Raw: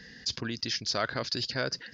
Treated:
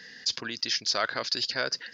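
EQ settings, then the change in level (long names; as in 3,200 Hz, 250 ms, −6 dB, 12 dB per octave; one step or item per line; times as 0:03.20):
high-pass filter 670 Hz 6 dB per octave
+4.0 dB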